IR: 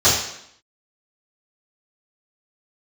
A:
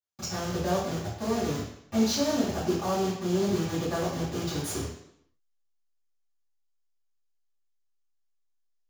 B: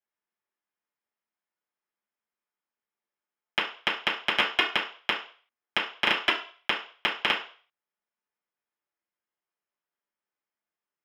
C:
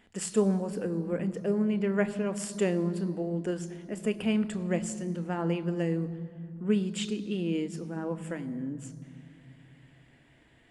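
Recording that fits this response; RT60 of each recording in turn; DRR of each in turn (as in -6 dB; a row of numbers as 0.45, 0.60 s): A; 0.70, 0.40, 2.5 s; -15.0, -6.5, 11.0 dB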